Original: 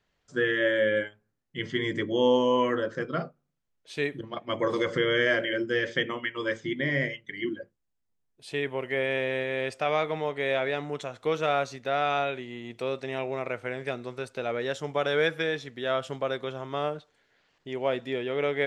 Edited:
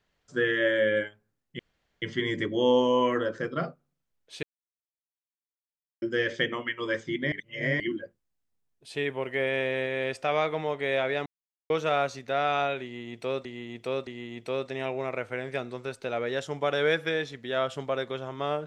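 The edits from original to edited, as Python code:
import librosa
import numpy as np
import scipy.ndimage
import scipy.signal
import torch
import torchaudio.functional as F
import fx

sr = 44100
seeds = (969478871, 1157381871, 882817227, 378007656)

y = fx.edit(x, sr, fx.insert_room_tone(at_s=1.59, length_s=0.43),
    fx.silence(start_s=4.0, length_s=1.59),
    fx.reverse_span(start_s=6.89, length_s=0.48),
    fx.silence(start_s=10.83, length_s=0.44),
    fx.repeat(start_s=12.4, length_s=0.62, count=3), tone=tone)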